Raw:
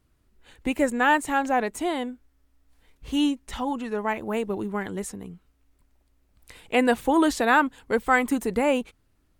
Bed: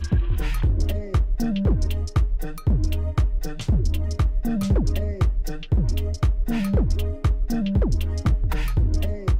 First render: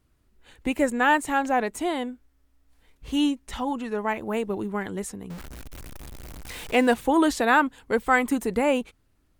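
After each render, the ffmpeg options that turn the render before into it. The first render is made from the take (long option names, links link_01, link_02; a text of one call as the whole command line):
ffmpeg -i in.wav -filter_complex "[0:a]asettb=1/sr,asplit=3[link_01][link_02][link_03];[link_01]atrim=end=5.304[link_04];[link_02]atrim=start=5.3:end=6.94,asetpts=PTS-STARTPTS,afade=type=in:duration=0.004:curve=qsin,afade=type=out:start_time=1.636:duration=0.004:curve=qsin,aeval=exprs='val(0)+0.5*0.02*sgn(val(0))':channel_layout=same[link_05];[link_03]atrim=start=6.936[link_06];[link_04][link_05]acrossfade=duration=0.004:curve1=hsin:curve2=qsin[link_07];[link_07][link_06]acrossfade=duration=0.004:curve1=qsin:curve2=hsin" out.wav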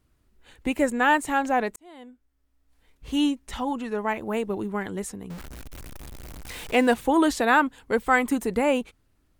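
ffmpeg -i in.wav -filter_complex "[0:a]asplit=2[link_01][link_02];[link_01]atrim=end=1.76,asetpts=PTS-STARTPTS,afade=type=out:start_time=1.756:duration=0.004:curve=hsin[link_03];[link_02]atrim=start=1.76,asetpts=PTS-STARTPTS,afade=type=in:duration=1.43[link_04];[link_03][link_04]concat=n=2:v=0:a=1" out.wav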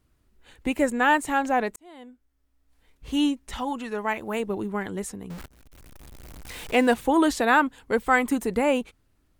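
ffmpeg -i in.wav -filter_complex "[0:a]asettb=1/sr,asplit=3[link_01][link_02][link_03];[link_01]atrim=end=3.584[link_04];[link_02]atrim=start=3.58:end=4.4,asetpts=PTS-STARTPTS,afade=type=in:duration=0.004:curve=qsin,afade=type=out:start_time=0.816:duration=0.004:curve=qsin,tiltshelf=frequency=970:gain=-3[link_05];[link_03]atrim=start=4.396[link_06];[link_04][link_05]acrossfade=duration=0.004:curve1=hsin:curve2=qsin[link_07];[link_07][link_06]acrossfade=duration=0.004:curve1=qsin:curve2=hsin,asplit=2[link_08][link_09];[link_08]atrim=end=5.46,asetpts=PTS-STARTPTS,afade=type=out:start_time=5.456:duration=0.004:curve=hsin:silence=0.1[link_10];[link_09]atrim=start=5.46,asetpts=PTS-STARTPTS,afade=type=in:duration=1.25:silence=0.1[link_11];[link_10][link_11]concat=n=2:v=0:a=1" out.wav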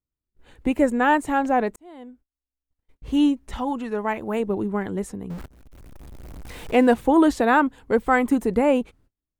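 ffmpeg -i in.wav -af "agate=range=-28dB:threshold=-57dB:ratio=16:detection=peak,tiltshelf=frequency=1300:gain=5" out.wav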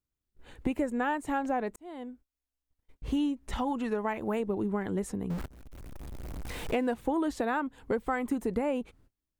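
ffmpeg -i in.wav -af "acompressor=threshold=-27dB:ratio=6" out.wav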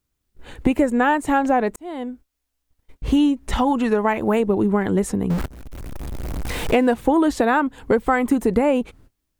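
ffmpeg -i in.wav -af "volume=12dB" out.wav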